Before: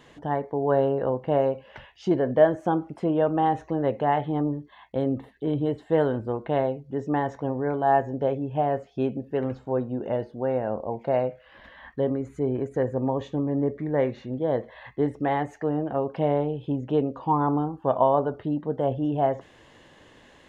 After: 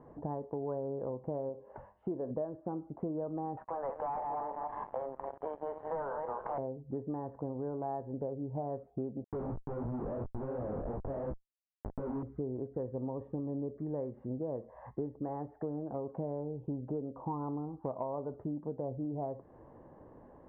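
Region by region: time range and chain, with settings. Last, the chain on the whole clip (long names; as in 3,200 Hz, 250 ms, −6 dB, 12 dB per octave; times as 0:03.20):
0:01.49–0:02.31: bass and treble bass −5 dB, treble −8 dB + hum removal 101.3 Hz, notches 38
0:03.57–0:06.58: feedback delay that plays each chunk backwards 158 ms, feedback 45%, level −10 dB + high-pass filter 850 Hz 24 dB per octave + leveller curve on the samples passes 5
0:09.24–0:12.23: comparator with hysteresis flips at −36.5 dBFS + chorus effect 2.9 Hz, delay 15.5 ms, depth 6.4 ms + one half of a high-frequency compander encoder only
whole clip: low-pass filter 1,000 Hz 24 dB per octave; dynamic equaliser 750 Hz, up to −5 dB, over −37 dBFS, Q 3.1; downward compressor 6 to 1, threshold −35 dBFS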